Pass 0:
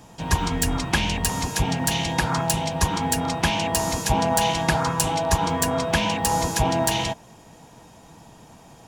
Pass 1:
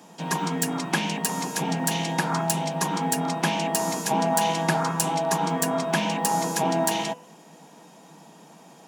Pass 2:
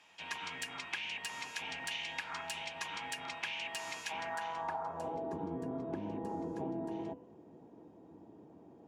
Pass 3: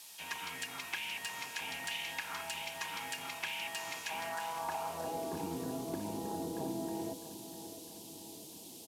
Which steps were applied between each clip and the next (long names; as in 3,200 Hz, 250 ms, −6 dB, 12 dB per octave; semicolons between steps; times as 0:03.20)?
elliptic high-pass filter 160 Hz; hum removal 248.2 Hz, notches 12; dynamic equaliser 3,500 Hz, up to −4 dB, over −40 dBFS, Q 0.87
sub-octave generator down 1 octave, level +1 dB; band-pass filter sweep 2,500 Hz → 340 Hz, 0:04.11–0:05.35; downward compressor 6 to 1, threshold −36 dBFS, peak gain reduction 11.5 dB
noise in a band 3,000–14,000 Hz −53 dBFS; repeating echo 654 ms, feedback 51%, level −12.5 dB